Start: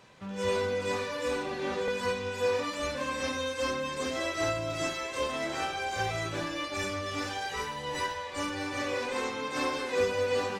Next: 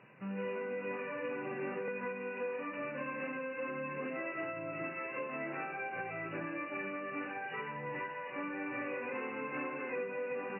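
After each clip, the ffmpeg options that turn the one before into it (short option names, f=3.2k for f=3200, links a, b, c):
-af "acompressor=threshold=-33dB:ratio=6,afftfilt=real='re*between(b*sr/4096,110,2900)':imag='im*between(b*sr/4096,110,2900)':win_size=4096:overlap=0.75,equalizer=f=810:w=0.82:g=-4.5"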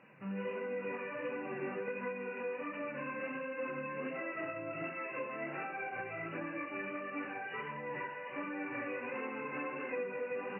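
-af "flanger=delay=3.6:depth=6.1:regen=-35:speed=1.4:shape=sinusoidal,volume=3dB"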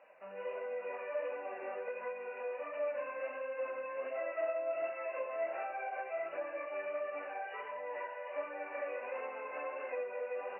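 -af "highpass=f=620:t=q:w=5.6,volume=-5dB"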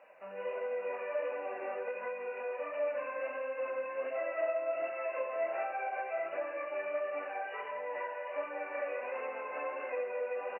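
-af "aecho=1:1:168:0.266,volume=2.5dB"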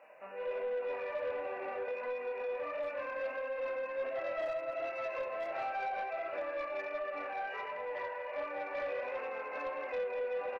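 -filter_complex "[0:a]asoftclip=type=hard:threshold=-27dB,asplit=2[a][b];[b]adelay=28,volume=-5dB[c];[a][c]amix=inputs=2:normalize=0,asoftclip=type=tanh:threshold=-30dB"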